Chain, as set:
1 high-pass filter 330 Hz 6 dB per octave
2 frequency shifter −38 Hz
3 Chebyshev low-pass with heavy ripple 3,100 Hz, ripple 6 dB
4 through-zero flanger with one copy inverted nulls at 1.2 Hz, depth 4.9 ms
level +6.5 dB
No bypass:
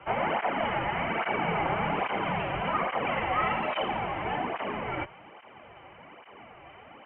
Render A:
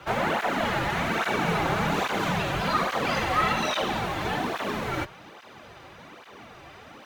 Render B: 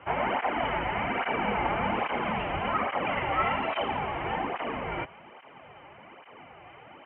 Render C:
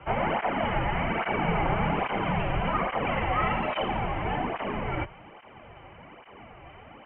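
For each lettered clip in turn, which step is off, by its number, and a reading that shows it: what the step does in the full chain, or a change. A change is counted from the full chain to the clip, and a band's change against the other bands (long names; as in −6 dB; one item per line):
3, 1 kHz band −3.0 dB
2, change in momentary loudness spread −8 LU
1, change in momentary loudness spread −9 LU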